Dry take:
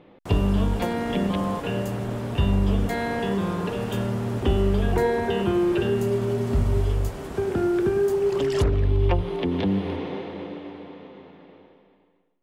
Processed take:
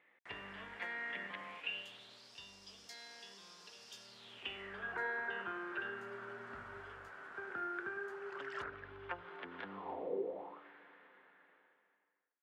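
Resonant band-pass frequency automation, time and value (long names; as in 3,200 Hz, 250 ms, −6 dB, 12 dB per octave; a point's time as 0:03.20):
resonant band-pass, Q 5.4
0:01.36 1,900 Hz
0:02.36 5,200 Hz
0:04.02 5,200 Hz
0:04.82 1,500 Hz
0:09.66 1,500 Hz
0:10.21 400 Hz
0:10.67 1,600 Hz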